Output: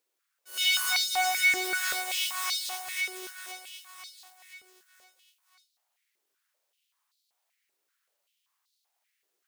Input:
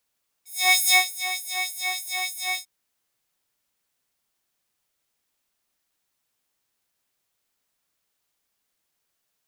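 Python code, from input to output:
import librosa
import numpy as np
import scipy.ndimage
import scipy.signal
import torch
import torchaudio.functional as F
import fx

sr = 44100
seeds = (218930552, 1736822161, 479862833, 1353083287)

p1 = fx.spec_clip(x, sr, under_db=23, at=(1.64, 2.49), fade=0.02)
p2 = np.maximum(p1, 0.0)
p3 = p2 + fx.echo_feedback(p2, sr, ms=508, feedback_pct=50, wet_db=-6.0, dry=0)
p4 = 10.0 ** (-17.5 / 20.0) * np.tanh(p3 / 10.0 ** (-17.5 / 20.0))
y = fx.filter_held_highpass(p4, sr, hz=5.2, low_hz=380.0, high_hz=4100.0)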